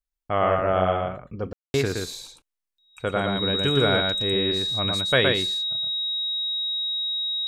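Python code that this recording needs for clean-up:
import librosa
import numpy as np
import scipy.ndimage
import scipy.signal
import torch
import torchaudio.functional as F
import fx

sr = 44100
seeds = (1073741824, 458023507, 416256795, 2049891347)

y = fx.notch(x, sr, hz=3800.0, q=30.0)
y = fx.fix_ambience(y, sr, seeds[0], print_start_s=2.4, print_end_s=2.9, start_s=1.53, end_s=1.74)
y = fx.fix_echo_inverse(y, sr, delay_ms=118, level_db=-3.5)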